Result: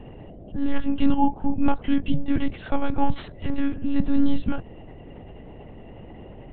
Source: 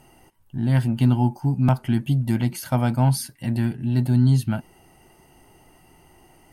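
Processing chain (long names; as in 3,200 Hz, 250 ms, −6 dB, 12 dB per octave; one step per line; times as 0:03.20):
0:03.16–0:03.60: lower of the sound and its delayed copy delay 1 ms
hum with harmonics 60 Hz, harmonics 12, −44 dBFS −4 dB per octave
one-pitch LPC vocoder at 8 kHz 280 Hz
level +2 dB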